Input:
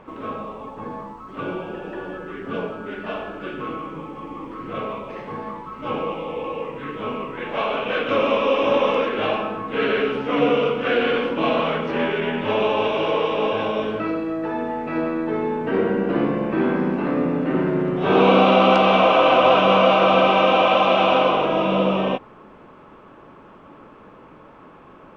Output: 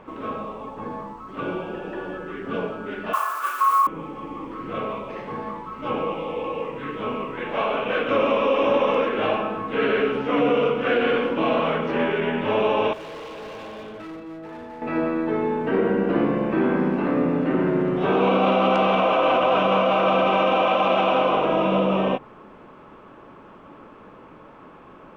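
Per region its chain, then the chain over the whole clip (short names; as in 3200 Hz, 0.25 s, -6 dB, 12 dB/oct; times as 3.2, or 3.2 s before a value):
3.13–3.87 modulation noise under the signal 10 dB + resonant high-pass 1100 Hz, resonance Q 8.2
12.93–14.82 resonator 160 Hz, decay 1.9 s, mix 70% + overloaded stage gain 34 dB
whole clip: notches 50/100/150 Hz; dynamic EQ 4400 Hz, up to -6 dB, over -41 dBFS, Q 1.2; limiter -11 dBFS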